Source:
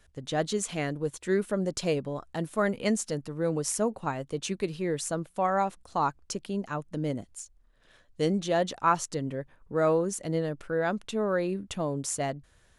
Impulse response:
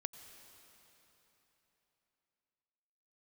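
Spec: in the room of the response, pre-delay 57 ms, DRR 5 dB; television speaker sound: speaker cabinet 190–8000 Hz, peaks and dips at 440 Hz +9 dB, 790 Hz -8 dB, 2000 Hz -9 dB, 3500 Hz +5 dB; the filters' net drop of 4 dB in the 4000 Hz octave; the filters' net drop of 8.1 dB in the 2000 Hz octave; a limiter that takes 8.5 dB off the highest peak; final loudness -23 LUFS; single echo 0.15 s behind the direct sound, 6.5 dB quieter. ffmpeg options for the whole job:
-filter_complex "[0:a]equalizer=f=2k:t=o:g=-6.5,equalizer=f=4k:t=o:g=-5.5,alimiter=limit=-21dB:level=0:latency=1,aecho=1:1:150:0.473,asplit=2[a][b];[1:a]atrim=start_sample=2205,adelay=57[c];[b][c]afir=irnorm=-1:irlink=0,volume=-2.5dB[d];[a][d]amix=inputs=2:normalize=0,highpass=f=190:w=0.5412,highpass=f=190:w=1.3066,equalizer=f=440:t=q:w=4:g=9,equalizer=f=790:t=q:w=4:g=-8,equalizer=f=2k:t=q:w=4:g=-9,equalizer=f=3.5k:t=q:w=4:g=5,lowpass=f=8k:w=0.5412,lowpass=f=8k:w=1.3066,volume=5.5dB"

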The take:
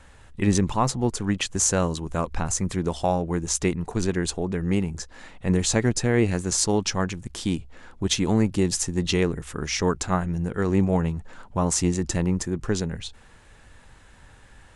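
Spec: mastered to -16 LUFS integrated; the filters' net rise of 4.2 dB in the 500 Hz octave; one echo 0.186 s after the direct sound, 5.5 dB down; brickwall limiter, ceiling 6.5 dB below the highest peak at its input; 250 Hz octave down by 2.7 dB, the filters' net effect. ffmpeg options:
-af "equalizer=f=250:t=o:g=-6.5,equalizer=f=500:t=o:g=7.5,alimiter=limit=-12.5dB:level=0:latency=1,aecho=1:1:186:0.531,volume=8.5dB"

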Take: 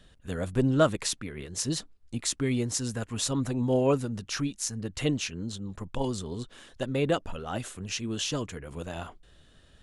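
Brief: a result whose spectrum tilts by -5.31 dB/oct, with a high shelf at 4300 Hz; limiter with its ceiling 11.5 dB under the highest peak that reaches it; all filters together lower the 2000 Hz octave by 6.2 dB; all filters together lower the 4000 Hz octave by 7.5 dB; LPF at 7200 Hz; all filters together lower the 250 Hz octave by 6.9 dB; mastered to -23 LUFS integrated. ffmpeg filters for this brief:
-af "lowpass=7.2k,equalizer=f=250:t=o:g=-8.5,equalizer=f=2k:t=o:g=-6,equalizer=f=4k:t=o:g=-3,highshelf=f=4.3k:g=-7.5,volume=14dB,alimiter=limit=-10.5dB:level=0:latency=1"

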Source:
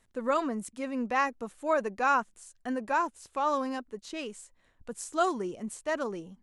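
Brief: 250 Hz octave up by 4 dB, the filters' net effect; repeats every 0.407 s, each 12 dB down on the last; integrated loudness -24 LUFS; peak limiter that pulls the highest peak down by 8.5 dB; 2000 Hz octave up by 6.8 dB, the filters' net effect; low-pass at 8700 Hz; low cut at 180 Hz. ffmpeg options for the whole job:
-af "highpass=180,lowpass=8.7k,equalizer=f=250:t=o:g=5.5,equalizer=f=2k:t=o:g=9,alimiter=limit=-18dB:level=0:latency=1,aecho=1:1:407|814|1221:0.251|0.0628|0.0157,volume=6.5dB"

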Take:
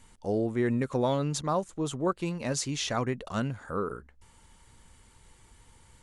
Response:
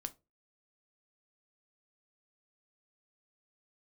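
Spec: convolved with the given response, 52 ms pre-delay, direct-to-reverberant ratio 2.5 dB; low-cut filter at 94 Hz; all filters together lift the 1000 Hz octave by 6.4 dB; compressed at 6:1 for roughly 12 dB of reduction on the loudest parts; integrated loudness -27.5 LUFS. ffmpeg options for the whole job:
-filter_complex "[0:a]highpass=94,equalizer=f=1k:t=o:g=8,acompressor=threshold=-32dB:ratio=6,asplit=2[a][b];[1:a]atrim=start_sample=2205,adelay=52[c];[b][c]afir=irnorm=-1:irlink=0,volume=0dB[d];[a][d]amix=inputs=2:normalize=0,volume=7dB"

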